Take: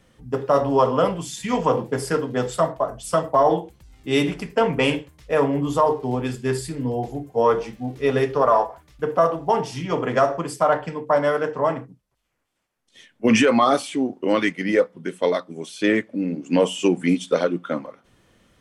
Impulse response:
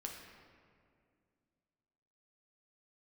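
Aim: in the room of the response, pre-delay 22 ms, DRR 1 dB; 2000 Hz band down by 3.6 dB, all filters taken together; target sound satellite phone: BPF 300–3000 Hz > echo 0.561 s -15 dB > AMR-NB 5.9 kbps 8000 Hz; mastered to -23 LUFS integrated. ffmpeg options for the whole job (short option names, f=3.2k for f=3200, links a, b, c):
-filter_complex "[0:a]equalizer=f=2k:t=o:g=-3.5,asplit=2[a][b];[1:a]atrim=start_sample=2205,adelay=22[c];[b][c]afir=irnorm=-1:irlink=0,volume=1dB[d];[a][d]amix=inputs=2:normalize=0,highpass=300,lowpass=3k,aecho=1:1:561:0.178,volume=-1dB" -ar 8000 -c:a libopencore_amrnb -b:a 5900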